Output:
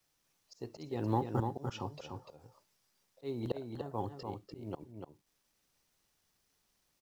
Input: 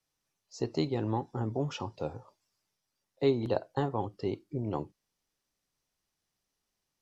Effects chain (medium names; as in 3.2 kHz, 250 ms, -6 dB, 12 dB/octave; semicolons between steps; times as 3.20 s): slow attack 546 ms; companded quantiser 8-bit; on a send: delay 295 ms -5.5 dB; on the sum: trim +3.5 dB